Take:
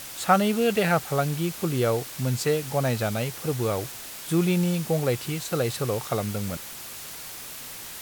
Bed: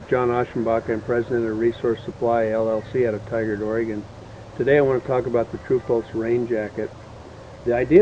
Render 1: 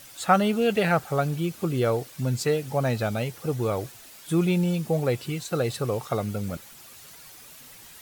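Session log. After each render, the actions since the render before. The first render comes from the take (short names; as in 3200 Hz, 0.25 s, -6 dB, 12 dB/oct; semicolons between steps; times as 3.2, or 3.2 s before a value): denoiser 10 dB, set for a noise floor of -39 dBFS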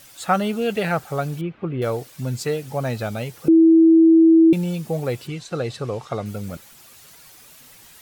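1.41–1.82 LPF 2600 Hz 24 dB/oct; 3.48–4.53 bleep 326 Hz -8.5 dBFS; 5.27–6.26 LPF 6400 Hz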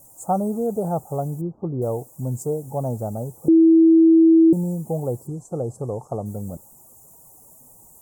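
elliptic band-stop 890–7400 Hz, stop band 50 dB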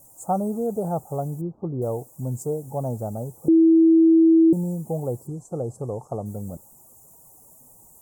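gain -2 dB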